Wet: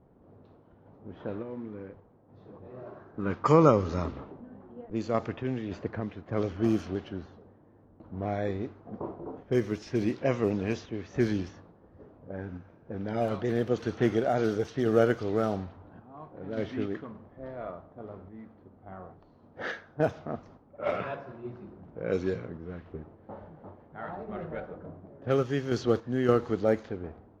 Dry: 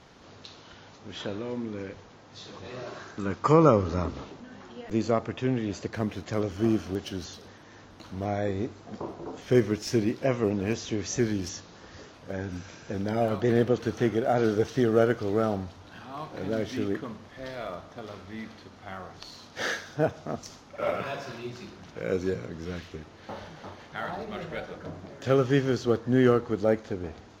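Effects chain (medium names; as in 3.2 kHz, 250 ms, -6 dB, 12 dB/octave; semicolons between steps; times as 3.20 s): level-controlled noise filter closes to 520 Hz, open at -20 dBFS; random-step tremolo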